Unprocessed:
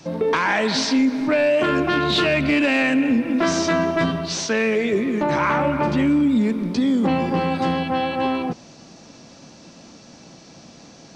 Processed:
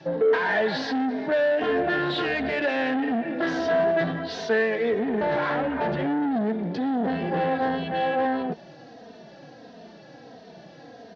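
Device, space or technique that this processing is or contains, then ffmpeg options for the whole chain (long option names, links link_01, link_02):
barber-pole flanger into a guitar amplifier: -filter_complex "[0:a]asplit=2[link_01][link_02];[link_02]adelay=3,afreqshift=-1.5[link_03];[link_01][link_03]amix=inputs=2:normalize=1,asoftclip=type=tanh:threshold=-24dB,highpass=77,equalizer=frequency=92:width_type=q:width=4:gain=-7,equalizer=frequency=460:width_type=q:width=4:gain=9,equalizer=frequency=710:width_type=q:width=4:gain=9,equalizer=frequency=1200:width_type=q:width=4:gain=-5,equalizer=frequency=1700:width_type=q:width=4:gain=9,equalizer=frequency=2400:width_type=q:width=4:gain=-6,lowpass=frequency=4100:width=0.5412,lowpass=frequency=4100:width=1.3066"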